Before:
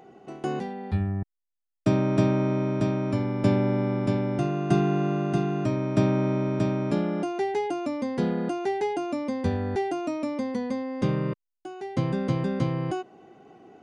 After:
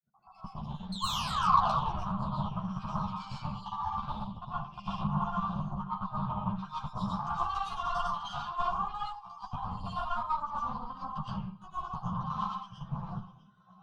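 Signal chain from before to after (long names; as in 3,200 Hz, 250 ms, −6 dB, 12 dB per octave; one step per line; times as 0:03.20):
time-frequency cells dropped at random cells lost 79%
gate pattern ".x.xxx.xxx.xxx." 198 BPM −24 dB
speech leveller within 4 dB 0.5 s
granular cloud, pitch spread up and down by 0 semitones
sound drawn into the spectrogram fall, 0:00.92–0:01.85, 280–4,300 Hz −29 dBFS
downward compressor 8 to 1, threshold −37 dBFS, peak gain reduction 16 dB
notch filter 560 Hz, Q 12
on a send: feedback echo with a high-pass in the loop 651 ms, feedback 49%, high-pass 1,000 Hz, level −17 dB
on the sum: comb and all-pass reverb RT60 0.64 s, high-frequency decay 0.6×, pre-delay 75 ms, DRR −9 dB
harmonic generator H 8 −13 dB, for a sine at −15.5 dBFS
drawn EQ curve 100 Hz 0 dB, 180 Hz +7 dB, 300 Hz −25 dB, 440 Hz −25 dB, 1,100 Hz +11 dB, 2,000 Hz −28 dB, 3,100 Hz −4 dB, 7,300 Hz −11 dB
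string-ensemble chorus
level +2.5 dB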